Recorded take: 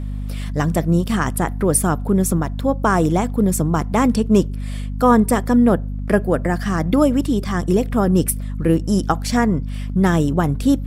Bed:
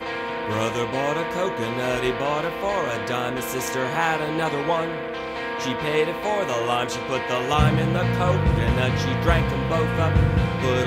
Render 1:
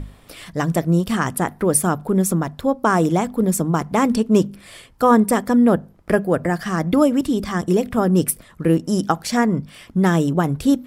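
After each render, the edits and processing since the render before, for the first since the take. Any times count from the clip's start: hum notches 50/100/150/200/250 Hz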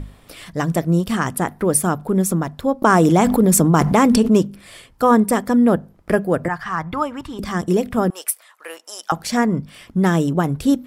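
2.82–4.37 s: level flattener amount 70%; 6.48–7.39 s: FFT filter 130 Hz 0 dB, 210 Hz -14 dB, 630 Hz -9 dB, 940 Hz +6 dB, 6.4 kHz -10 dB, 11 kHz -14 dB; 8.10–9.12 s: high-pass 740 Hz 24 dB/octave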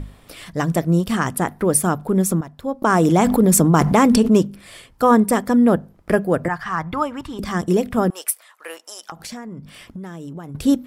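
2.41–3.58 s: fade in equal-power, from -12 dB; 8.80–10.55 s: compression 8:1, threshold -30 dBFS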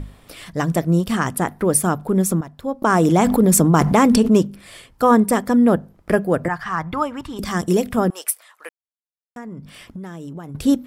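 7.36–7.96 s: treble shelf 4 kHz +6.5 dB; 8.69–9.36 s: mute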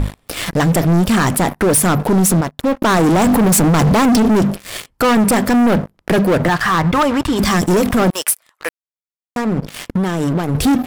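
waveshaping leveller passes 5; peak limiter -9.5 dBFS, peak gain reduction 8 dB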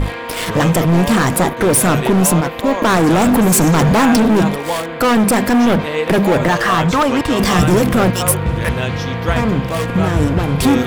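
add bed +2 dB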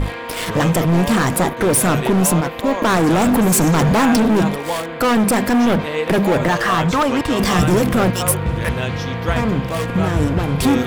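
trim -2.5 dB

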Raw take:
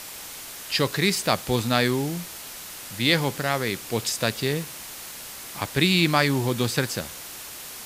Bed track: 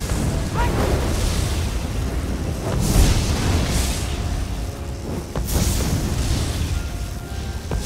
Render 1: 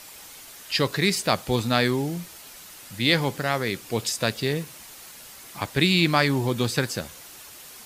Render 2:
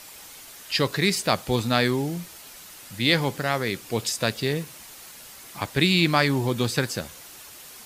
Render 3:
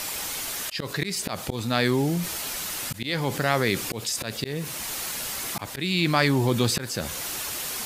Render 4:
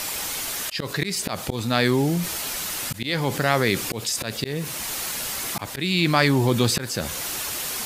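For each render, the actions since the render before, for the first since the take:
noise reduction 7 dB, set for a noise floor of -39 dBFS
no audible change
slow attack 496 ms; level flattener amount 50%
trim +2.5 dB

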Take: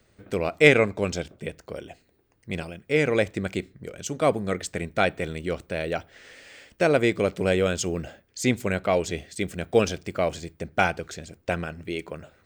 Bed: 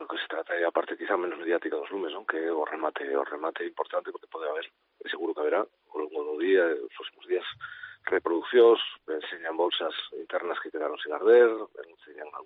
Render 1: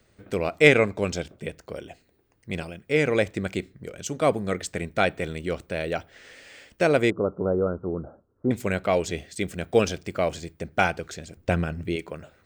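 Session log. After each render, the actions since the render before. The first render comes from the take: 7.10–8.51 s: rippled Chebyshev low-pass 1.4 kHz, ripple 3 dB; 11.37–11.96 s: bass shelf 270 Hz +9.5 dB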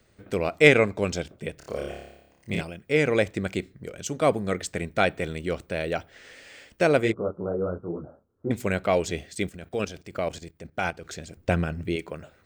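1.55–2.61 s: flutter echo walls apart 4.9 m, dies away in 0.89 s; 7.00–8.49 s: detune thickener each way 39 cents -> 51 cents; 9.49–11.08 s: level held to a coarse grid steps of 13 dB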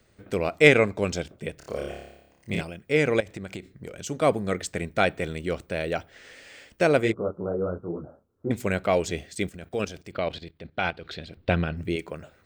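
3.20–4.07 s: compression 12:1, threshold -31 dBFS; 10.12–11.77 s: resonant high shelf 5.2 kHz -10.5 dB, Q 3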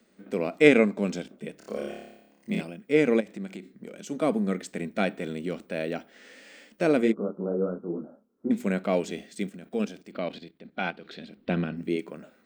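resonant low shelf 150 Hz -13 dB, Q 3; harmonic-percussive split percussive -8 dB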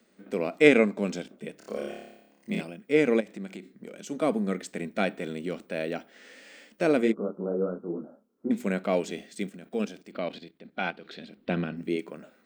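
bass shelf 160 Hz -5 dB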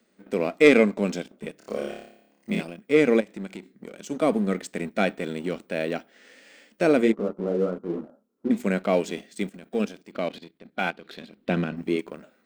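waveshaping leveller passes 1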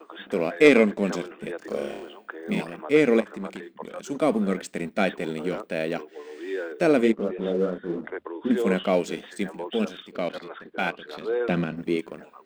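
add bed -8.5 dB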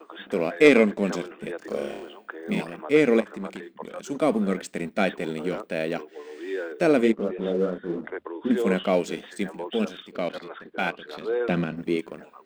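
no audible change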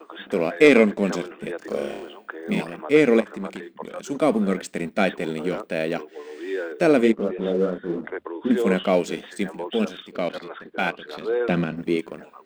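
trim +2.5 dB; peak limiter -3 dBFS, peak gain reduction 2 dB

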